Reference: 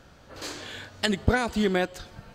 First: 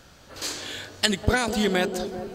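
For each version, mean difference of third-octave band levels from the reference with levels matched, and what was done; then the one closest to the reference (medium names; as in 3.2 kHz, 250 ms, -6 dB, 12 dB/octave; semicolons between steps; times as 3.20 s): 4.0 dB: treble shelf 3 kHz +10 dB; feedback echo behind a band-pass 197 ms, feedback 66%, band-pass 410 Hz, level -6 dB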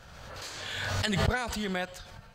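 6.0 dB: peaking EQ 310 Hz -13 dB 0.98 oct; swell ahead of each attack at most 28 dB/s; trim -4.5 dB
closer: first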